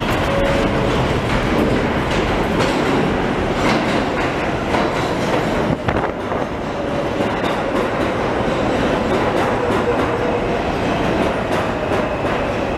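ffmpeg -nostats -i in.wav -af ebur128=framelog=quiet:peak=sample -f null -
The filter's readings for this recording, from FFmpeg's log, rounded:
Integrated loudness:
  I:         -18.3 LUFS
  Threshold: -28.3 LUFS
Loudness range:
  LRA:         2.2 LU
  Threshold: -38.3 LUFS
  LRA low:   -19.6 LUFS
  LRA high:  -17.4 LUFS
Sample peak:
  Peak:       -2.9 dBFS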